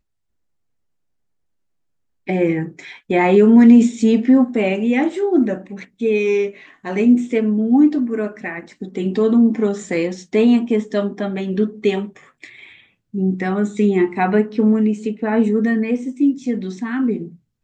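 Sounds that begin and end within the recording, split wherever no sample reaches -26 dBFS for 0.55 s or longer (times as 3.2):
2.28–12.45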